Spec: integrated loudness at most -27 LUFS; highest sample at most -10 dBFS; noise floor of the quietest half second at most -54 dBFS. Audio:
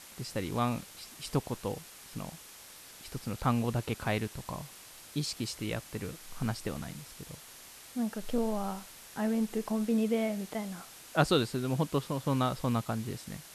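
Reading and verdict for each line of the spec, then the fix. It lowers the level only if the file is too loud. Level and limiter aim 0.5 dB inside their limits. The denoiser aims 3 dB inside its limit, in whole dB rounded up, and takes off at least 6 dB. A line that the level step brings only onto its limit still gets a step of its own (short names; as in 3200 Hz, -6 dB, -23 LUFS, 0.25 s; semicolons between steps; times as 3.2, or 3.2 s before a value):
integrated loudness -33.5 LUFS: OK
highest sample -11.5 dBFS: OK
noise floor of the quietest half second -51 dBFS: fail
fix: denoiser 6 dB, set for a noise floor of -51 dBFS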